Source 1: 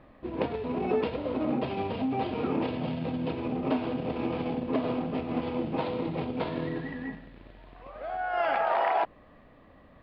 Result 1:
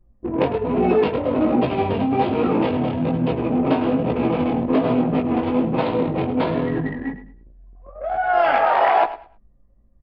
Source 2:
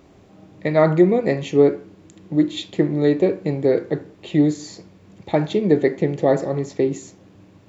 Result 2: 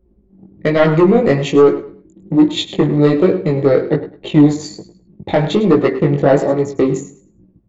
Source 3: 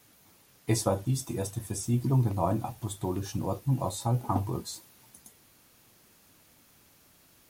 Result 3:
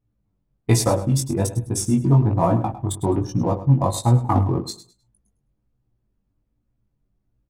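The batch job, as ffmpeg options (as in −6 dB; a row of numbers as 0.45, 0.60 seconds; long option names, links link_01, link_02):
-filter_complex "[0:a]anlmdn=2.51,asplit=2[link_01][link_02];[link_02]acompressor=threshold=-26dB:ratio=12,volume=-1.5dB[link_03];[link_01][link_03]amix=inputs=2:normalize=0,aeval=exprs='0.794*sin(PI/2*1.78*val(0)/0.794)':channel_layout=same,aecho=1:1:104|208|312:0.2|0.0459|0.0106,flanger=delay=16.5:depth=5.1:speed=1.2"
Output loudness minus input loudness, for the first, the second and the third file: +10.5, +5.5, +10.0 LU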